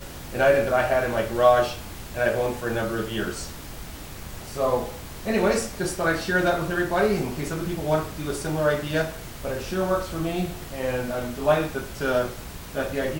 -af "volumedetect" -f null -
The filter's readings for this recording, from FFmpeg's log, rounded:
mean_volume: -25.1 dB
max_volume: -6.0 dB